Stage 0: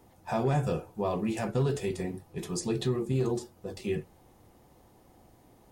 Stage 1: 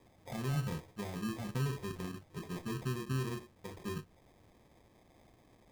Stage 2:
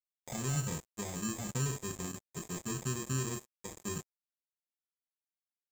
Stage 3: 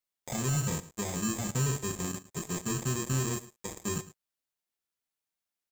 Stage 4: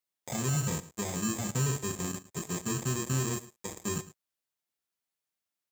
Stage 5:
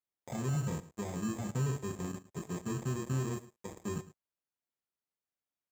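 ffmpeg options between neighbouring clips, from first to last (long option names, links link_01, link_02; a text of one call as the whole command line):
ffmpeg -i in.wav -filter_complex "[0:a]acrossover=split=280[link_01][link_02];[link_02]acompressor=threshold=-41dB:ratio=6[link_03];[link_01][link_03]amix=inputs=2:normalize=0,acrusher=samples=31:mix=1:aa=0.000001,volume=-5dB" out.wav
ffmpeg -i in.wav -af "lowpass=frequency=7300:width_type=q:width=13,acrusher=bits=6:mix=0:aa=0.5" out.wav
ffmpeg -i in.wav -af "volume=30dB,asoftclip=hard,volume=-30dB,aecho=1:1:109:0.141,volume=5.5dB" out.wav
ffmpeg -i in.wav -af "highpass=59" out.wav
ffmpeg -i in.wav -af "highshelf=frequency=2200:gain=-11.5,volume=-2.5dB" out.wav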